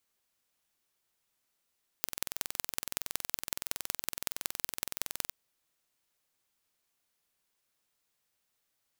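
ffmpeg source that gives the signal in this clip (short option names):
-f lavfi -i "aevalsrc='0.75*eq(mod(n,2051),0)*(0.5+0.5*eq(mod(n,8204),0))':d=3.3:s=44100"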